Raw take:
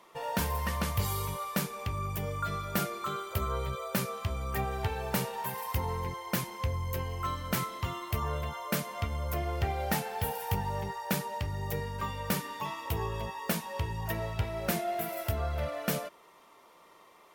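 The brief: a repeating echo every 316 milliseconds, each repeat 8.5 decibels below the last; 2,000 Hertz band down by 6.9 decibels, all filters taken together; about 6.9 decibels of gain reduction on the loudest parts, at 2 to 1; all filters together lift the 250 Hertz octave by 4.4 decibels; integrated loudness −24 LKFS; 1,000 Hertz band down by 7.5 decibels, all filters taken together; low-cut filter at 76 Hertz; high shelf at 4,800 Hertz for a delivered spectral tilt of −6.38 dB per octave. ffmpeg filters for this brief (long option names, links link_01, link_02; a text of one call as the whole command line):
ffmpeg -i in.wav -af "highpass=76,equalizer=frequency=250:width_type=o:gain=7,equalizer=frequency=1000:width_type=o:gain=-8.5,equalizer=frequency=2000:width_type=o:gain=-5,highshelf=frequency=4800:gain=-6.5,acompressor=threshold=-37dB:ratio=2,aecho=1:1:316|632|948|1264:0.376|0.143|0.0543|0.0206,volume=15dB" out.wav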